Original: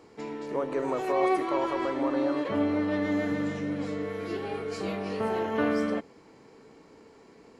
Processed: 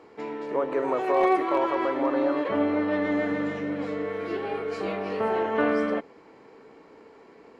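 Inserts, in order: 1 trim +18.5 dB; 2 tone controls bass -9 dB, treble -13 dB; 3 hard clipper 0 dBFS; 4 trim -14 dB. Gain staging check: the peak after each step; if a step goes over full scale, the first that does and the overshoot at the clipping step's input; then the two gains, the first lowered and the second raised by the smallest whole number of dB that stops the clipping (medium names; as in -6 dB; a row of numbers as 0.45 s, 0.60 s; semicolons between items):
+5.0 dBFS, +4.0 dBFS, 0.0 dBFS, -14.0 dBFS; step 1, 4.0 dB; step 1 +14.5 dB, step 4 -10 dB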